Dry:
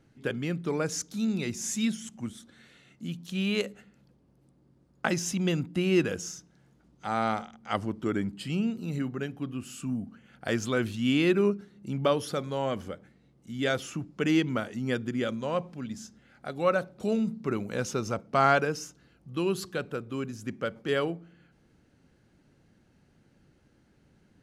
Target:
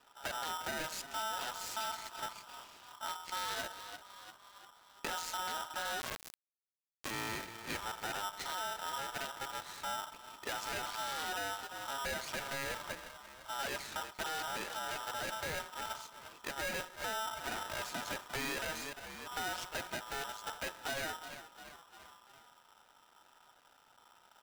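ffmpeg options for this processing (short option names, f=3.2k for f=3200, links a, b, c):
-filter_complex "[0:a]lowpass=f=5.1k:w=0.5412,lowpass=f=5.1k:w=1.3066,aeval=exprs='max(val(0),0)':c=same,asplit=5[a][b][c][d][e];[b]adelay=346,afreqshift=-32,volume=-20dB[f];[c]adelay=692,afreqshift=-64,volume=-25dB[g];[d]adelay=1038,afreqshift=-96,volume=-30.1dB[h];[e]adelay=1384,afreqshift=-128,volume=-35.1dB[i];[a][f][g][h][i]amix=inputs=5:normalize=0,aeval=exprs='(tanh(5.01*val(0)+0.55)-tanh(0.55))/5.01':c=same,highpass=f=79:w=0.5412,highpass=f=79:w=1.3066,lowshelf=f=110:g=-2.5,alimiter=level_in=9.5dB:limit=-24dB:level=0:latency=1:release=16,volume=-9.5dB,adynamicequalizer=threshold=0.00126:dfrequency=280:dqfactor=2:tfrequency=280:tqfactor=2:attack=5:release=100:ratio=0.375:range=3:mode=cutabove:tftype=bell,acontrast=39,asettb=1/sr,asplit=3[j][k][l];[j]atrim=end=6.004[m];[k]atrim=start=6:end=7.11,asetpts=PTS-STARTPTS,afade=t=in:d=0.004:c=qsin,afade=t=out:st=1.106:d=0.004:c=qsin,acrusher=bits=3:dc=4:mix=0:aa=0.000001[n];[l]atrim=start=7.106[o];[m][n]acrossfade=d=0.004:c1=hsin:c2=qsin[p];[p][o]acrossfade=d=0.004:c1=qsin:c2=hsin,acompressor=threshold=-39dB:ratio=2,aeval=exprs='val(0)*sgn(sin(2*PI*1100*n/s))':c=same,volume=1.5dB"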